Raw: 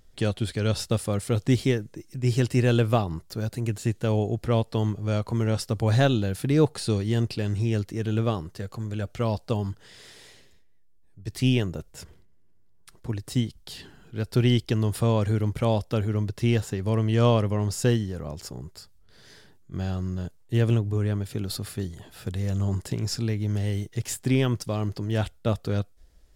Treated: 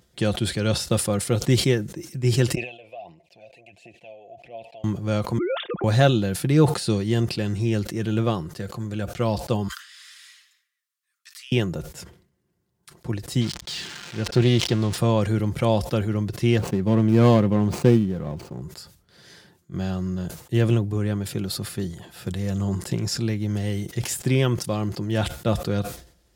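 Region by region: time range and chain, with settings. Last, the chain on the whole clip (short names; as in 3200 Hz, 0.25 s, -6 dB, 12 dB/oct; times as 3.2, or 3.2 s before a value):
2.55–4.84 compressor 12:1, threshold -29 dBFS + phaser 1.5 Hz, delay 2.3 ms, feedback 51% + double band-pass 1300 Hz, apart 1.9 oct
5.38–5.84 sine-wave speech + compressor 2.5:1, threshold -29 dBFS
9.68–11.52 steep high-pass 1100 Hz 96 dB/oct + compressor 4:1, threshold -44 dBFS
13.41–14.98 switching spikes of -18.5 dBFS + air absorption 140 m + Doppler distortion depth 0.19 ms
16.58–18.62 median filter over 25 samples + dynamic EQ 230 Hz, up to +6 dB, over -36 dBFS, Q 1.1
whole clip: HPF 61 Hz 24 dB/oct; comb 5.7 ms, depth 39%; sustainer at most 110 dB/s; gain +2.5 dB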